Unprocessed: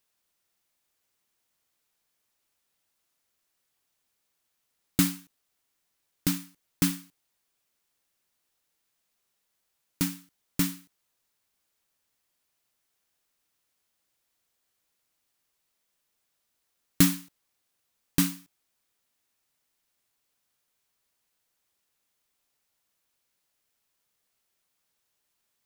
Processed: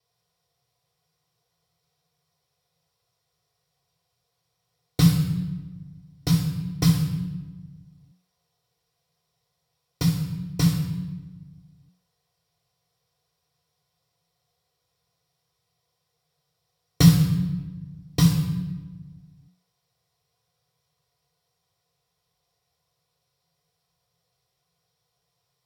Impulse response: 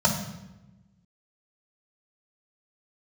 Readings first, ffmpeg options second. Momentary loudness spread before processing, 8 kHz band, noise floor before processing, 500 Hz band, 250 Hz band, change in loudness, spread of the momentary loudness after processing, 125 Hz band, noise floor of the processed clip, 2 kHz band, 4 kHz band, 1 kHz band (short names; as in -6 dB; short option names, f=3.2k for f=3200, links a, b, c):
18 LU, -1.0 dB, -78 dBFS, +7.5 dB, +7.0 dB, +5.0 dB, 19 LU, +15.0 dB, -78 dBFS, 0.0 dB, +4.5 dB, +5.5 dB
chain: -filter_complex "[1:a]atrim=start_sample=2205,asetrate=33957,aresample=44100[a];[0:a][a]afir=irnorm=-1:irlink=0,volume=-11.5dB"